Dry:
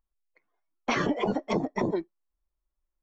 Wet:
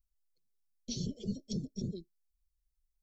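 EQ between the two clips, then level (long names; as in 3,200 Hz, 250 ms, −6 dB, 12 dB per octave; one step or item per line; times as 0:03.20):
elliptic band-stop filter 310–4,200 Hz, stop band 60 dB
phaser with its sweep stopped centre 740 Hz, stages 4
+2.0 dB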